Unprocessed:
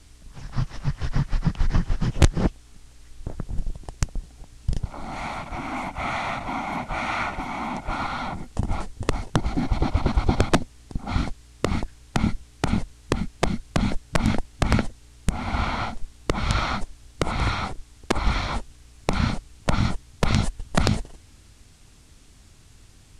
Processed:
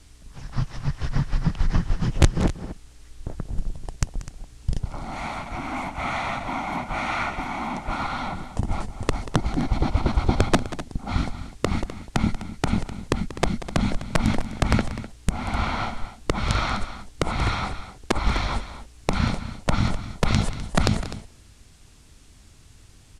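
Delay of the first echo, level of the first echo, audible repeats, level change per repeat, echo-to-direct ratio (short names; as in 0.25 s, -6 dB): 0.186 s, -15.0 dB, 2, no steady repeat, -11.5 dB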